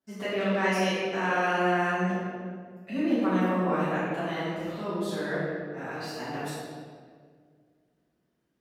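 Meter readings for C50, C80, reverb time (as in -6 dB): -3.5 dB, -1.5 dB, 1.9 s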